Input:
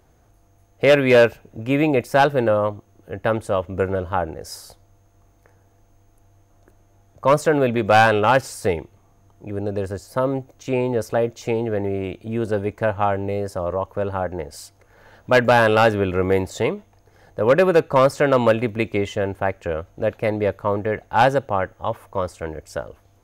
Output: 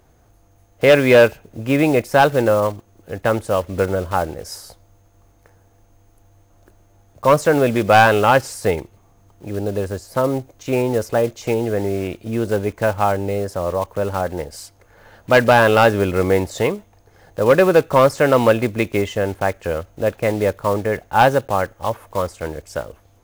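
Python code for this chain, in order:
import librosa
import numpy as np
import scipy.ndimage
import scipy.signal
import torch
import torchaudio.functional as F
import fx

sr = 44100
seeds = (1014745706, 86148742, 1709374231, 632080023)

y = fx.block_float(x, sr, bits=5)
y = F.gain(torch.from_numpy(y), 2.5).numpy()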